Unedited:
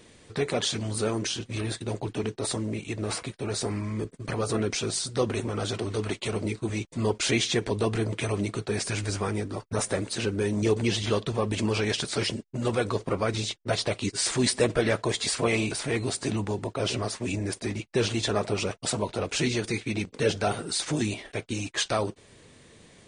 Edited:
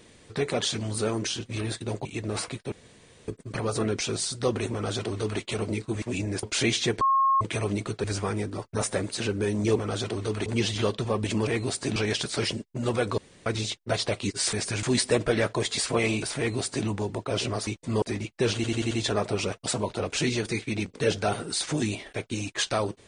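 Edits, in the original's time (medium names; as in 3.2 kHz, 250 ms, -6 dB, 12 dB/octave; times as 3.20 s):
2.05–2.79 s: delete
3.46–4.02 s: room tone
5.45–6.15 s: copy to 10.74 s
6.76–7.11 s: swap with 17.16–17.57 s
7.69–8.09 s: bleep 1.08 kHz -18.5 dBFS
8.72–9.02 s: move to 14.32 s
12.97–13.25 s: room tone
15.87–16.36 s: copy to 11.75 s
18.10 s: stutter 0.09 s, 5 plays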